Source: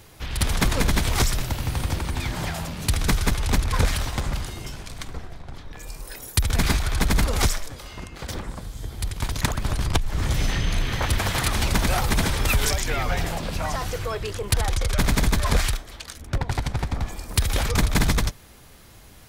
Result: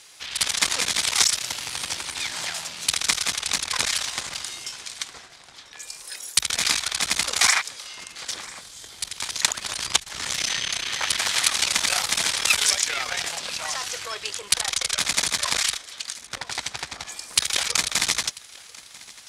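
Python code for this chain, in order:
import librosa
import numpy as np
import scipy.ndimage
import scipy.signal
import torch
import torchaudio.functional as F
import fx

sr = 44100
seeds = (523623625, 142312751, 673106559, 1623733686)

p1 = fx.spec_paint(x, sr, seeds[0], shape='noise', start_s=7.4, length_s=0.22, low_hz=660.0, high_hz=2500.0, level_db=-24.0)
p2 = fx.cheby_harmonics(p1, sr, harmonics=(4,), levels_db=(-13,), full_scale_db=-7.0)
p3 = fx.weighting(p2, sr, curve='ITU-R 468')
p4 = p3 + fx.echo_single(p3, sr, ms=992, db=-22.0, dry=0)
y = p4 * librosa.db_to_amplitude(-4.0)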